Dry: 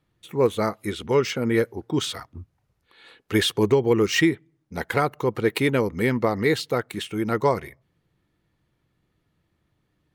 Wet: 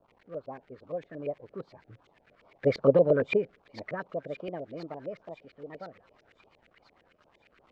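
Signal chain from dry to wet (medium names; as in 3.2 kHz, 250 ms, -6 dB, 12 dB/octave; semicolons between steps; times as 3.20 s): gliding tape speed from 117% -> 146%; Doppler pass-by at 2.88 s, 10 m/s, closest 3.5 m; peaking EQ 9.8 kHz -11.5 dB 0.33 oct; band-stop 2.7 kHz, Q 5.7; crackle 580 per s -41 dBFS; LFO notch saw down 2.5 Hz 750–2100 Hz; feedback echo behind a high-pass 1026 ms, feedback 64%, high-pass 4 kHz, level -6 dB; LFO low-pass saw up 8.7 Hz 420–2300 Hz; trim -3.5 dB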